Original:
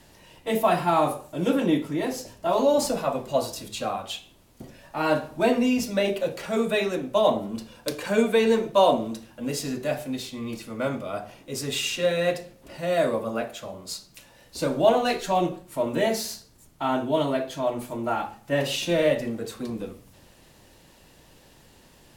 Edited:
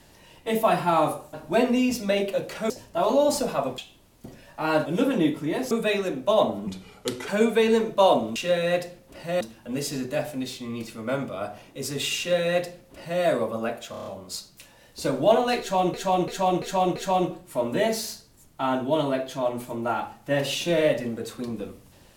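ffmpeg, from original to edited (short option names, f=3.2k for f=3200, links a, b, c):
-filter_complex "[0:a]asplit=19[a][b][c][d][e][f][g][h][i][j][k][l][m][n][o][p][q][r][s];[a]atrim=end=1.342[t];[b]atrim=start=5.218:end=6.582[u];[c]atrim=start=2.188:end=3.272[v];[d]atrim=start=4.138:end=5.222[w];[e]atrim=start=1.338:end=2.192[x];[f]atrim=start=6.578:end=7.544[y];[g]atrim=start=7.54:end=8.05,asetpts=PTS-STARTPTS,asetrate=37044,aresample=44100[z];[h]atrim=start=8.046:end=9.132[aa];[i]atrim=start=11.898:end=12.952[ab];[j]atrim=start=9.128:end=13.662[ac];[k]atrim=start=13.628:end=13.662[ad];[l]atrim=start=13.628:end=13.662[ae];[m]atrim=start=13.628:end=13.662[af];[n]atrim=start=13.628:end=13.662[ag];[o]atrim=start=13.628:end=15.512[ah];[p]atrim=start=15.168:end=15.512[ai];[q]atrim=start=15.168:end=15.512[aj];[r]atrim=start=15.168:end=15.512[ak];[s]atrim=start=15.168[al];[t][u]acrossfade=d=0.004:c1=hsin:c2=hsin[am];[am][v]acrossfade=d=0.004:c1=hsin:c2=hsin[an];[an][w]acrossfade=d=0.004:c1=hsin:c2=hsin[ao];[ao][x]acrossfade=d=0.004:c1=hsin:c2=hsin[ap];[ap][y]acrossfade=d=0.004:c1=hsin:c2=hsin[aq];[aq][z]acrossfade=d=0.004:c1=hsin:c2=hsin[ar];[ar][aa]acrossfade=d=0.004:c1=hsin:c2=hsin[as];[as][ab]acrossfade=d=0.004:c1=hsin:c2=hsin[at];[at][ac]acrossfade=d=0.004:c1=hsin:c2=hsin[au];[au][ad]acrossfade=d=0.004:c1=hsin:c2=hsin[av];[av][ae]acrossfade=d=0.004:c1=hsin:c2=hsin[aw];[aw][af]acrossfade=d=0.004:c1=hsin:c2=hsin[ax];[ax][ag]acrossfade=d=0.004:c1=hsin:c2=hsin[ay];[ay][ah]acrossfade=d=0.004:c1=hsin:c2=hsin[az];[az][ai]acrossfade=d=0.004:c1=hsin:c2=hsin[ba];[ba][aj]acrossfade=d=0.004:c1=hsin:c2=hsin[bb];[bb][ak]acrossfade=d=0.004:c1=hsin:c2=hsin[bc];[bc][al]acrossfade=d=0.004:c1=hsin:c2=hsin"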